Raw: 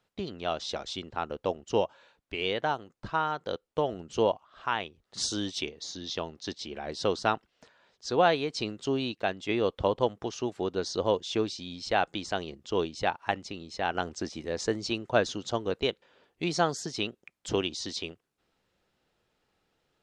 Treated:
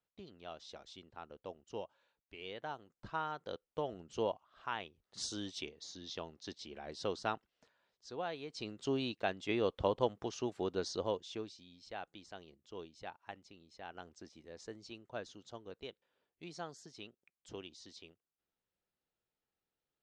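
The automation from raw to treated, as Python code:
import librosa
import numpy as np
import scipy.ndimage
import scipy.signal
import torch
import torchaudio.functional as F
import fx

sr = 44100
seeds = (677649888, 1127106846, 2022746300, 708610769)

y = fx.gain(x, sr, db=fx.line((2.42, -17.0), (3.09, -10.0), (7.34, -10.0), (8.27, -18.0), (8.88, -6.0), (10.85, -6.0), (11.68, -19.0)))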